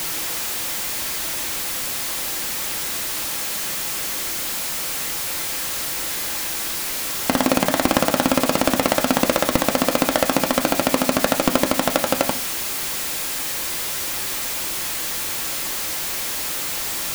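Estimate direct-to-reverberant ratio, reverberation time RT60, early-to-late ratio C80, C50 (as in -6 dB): 6.0 dB, 0.50 s, 18.5 dB, 14.0 dB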